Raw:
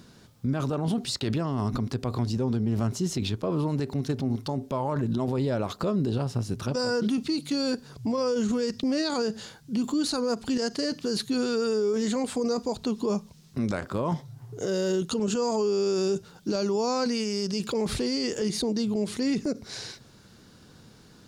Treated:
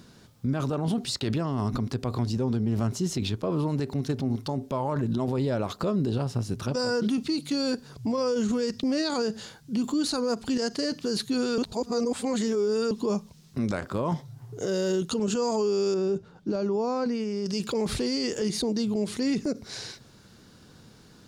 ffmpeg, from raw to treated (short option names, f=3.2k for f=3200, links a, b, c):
-filter_complex "[0:a]asettb=1/sr,asplit=3[a][b][c];[a]atrim=end=15.944[d];[b]atrim=start=15.94:end=17.46,asetpts=PTS-STARTPTS,afade=t=in:d=0.004:c=qsin,afade=t=out:st=1.516:d=0.004:c=qsin,lowpass=f=1.2k:p=1[e];[c]atrim=start=17.456[f];[d][e]acrossfade=d=0.004:c1=hsin:c2=qsin[g];[g][f]acrossfade=d=0.004:c1=qsin:c2=hsin,asplit=3[h][i][j];[h]atrim=end=11.582[k];[i]atrim=start=11.578:end=12.912,asetpts=PTS-STARTPTS,areverse[l];[j]atrim=start=12.908[m];[k][l]acrossfade=d=0.004:c1=hsin:c2=hsin[n];[n][m]acrossfade=d=0.004:c1=hsin:c2=hsin"